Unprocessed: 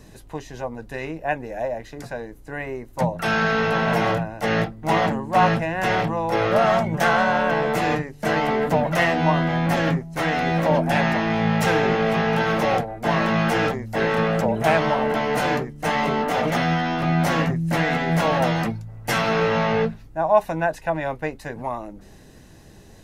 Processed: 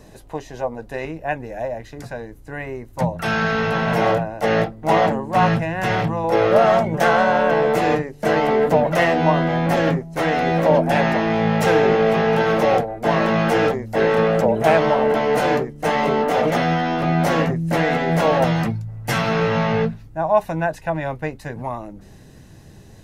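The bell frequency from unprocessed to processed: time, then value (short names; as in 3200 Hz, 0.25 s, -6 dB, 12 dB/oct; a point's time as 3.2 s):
bell +6.5 dB 1.3 oct
630 Hz
from 1.05 s 86 Hz
from 3.98 s 560 Hz
from 5.32 s 110 Hz
from 6.24 s 470 Hz
from 18.44 s 120 Hz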